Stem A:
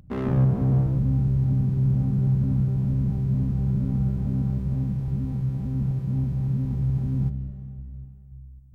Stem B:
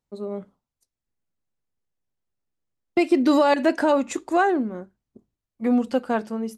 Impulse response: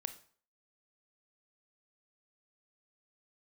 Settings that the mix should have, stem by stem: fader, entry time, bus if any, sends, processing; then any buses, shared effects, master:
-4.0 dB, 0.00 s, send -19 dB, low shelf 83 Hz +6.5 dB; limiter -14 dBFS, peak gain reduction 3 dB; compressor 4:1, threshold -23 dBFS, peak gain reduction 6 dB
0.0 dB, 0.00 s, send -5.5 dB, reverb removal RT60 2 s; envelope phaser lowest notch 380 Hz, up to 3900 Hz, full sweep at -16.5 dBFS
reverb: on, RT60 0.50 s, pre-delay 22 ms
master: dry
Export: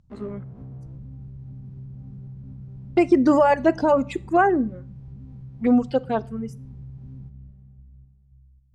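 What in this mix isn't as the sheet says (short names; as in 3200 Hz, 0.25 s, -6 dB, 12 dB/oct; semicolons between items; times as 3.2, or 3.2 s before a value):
stem A -4.0 dB -> -14.5 dB; master: extra LPF 6500 Hz 12 dB/oct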